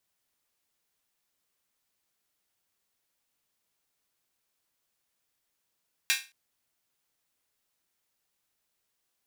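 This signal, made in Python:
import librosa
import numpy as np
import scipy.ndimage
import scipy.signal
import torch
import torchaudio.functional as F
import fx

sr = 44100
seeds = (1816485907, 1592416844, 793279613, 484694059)

y = fx.drum_hat_open(sr, length_s=0.22, from_hz=2000.0, decay_s=0.29)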